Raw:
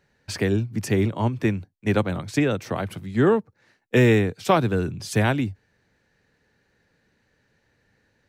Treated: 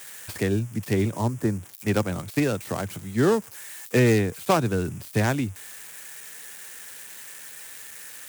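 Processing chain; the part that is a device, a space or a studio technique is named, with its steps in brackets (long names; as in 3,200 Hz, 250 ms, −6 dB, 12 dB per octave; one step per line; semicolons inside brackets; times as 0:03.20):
0:01.13–0:01.73: flat-topped bell 4,200 Hz −15 dB 2.3 octaves
budget class-D amplifier (gap after every zero crossing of 0.11 ms; spike at every zero crossing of −23.5 dBFS)
level −2 dB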